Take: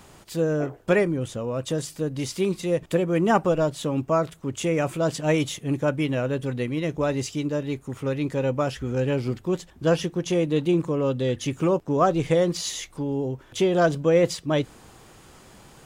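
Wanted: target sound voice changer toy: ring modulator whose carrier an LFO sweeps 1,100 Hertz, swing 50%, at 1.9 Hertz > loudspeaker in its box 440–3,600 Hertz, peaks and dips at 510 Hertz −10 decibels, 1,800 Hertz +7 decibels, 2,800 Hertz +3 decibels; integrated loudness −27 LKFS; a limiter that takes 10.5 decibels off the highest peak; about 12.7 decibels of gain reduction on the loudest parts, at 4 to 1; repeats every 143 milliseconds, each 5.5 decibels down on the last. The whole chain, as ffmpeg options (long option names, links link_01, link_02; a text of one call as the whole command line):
ffmpeg -i in.wav -af "acompressor=threshold=-31dB:ratio=4,alimiter=level_in=5dB:limit=-24dB:level=0:latency=1,volume=-5dB,aecho=1:1:143|286|429|572|715|858|1001:0.531|0.281|0.149|0.079|0.0419|0.0222|0.0118,aeval=exprs='val(0)*sin(2*PI*1100*n/s+1100*0.5/1.9*sin(2*PI*1.9*n/s))':channel_layout=same,highpass=440,equalizer=frequency=510:width_type=q:width=4:gain=-10,equalizer=frequency=1800:width_type=q:width=4:gain=7,equalizer=frequency=2800:width_type=q:width=4:gain=3,lowpass=frequency=3600:width=0.5412,lowpass=frequency=3600:width=1.3066,volume=9dB" out.wav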